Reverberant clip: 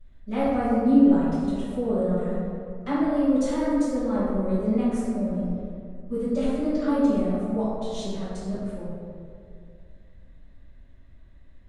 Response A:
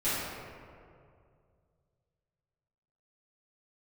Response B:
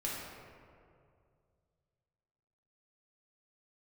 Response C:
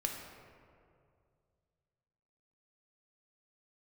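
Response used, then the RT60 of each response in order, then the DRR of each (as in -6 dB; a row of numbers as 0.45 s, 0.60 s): A; 2.3 s, 2.3 s, 2.3 s; -15.0 dB, -6.0 dB, 1.0 dB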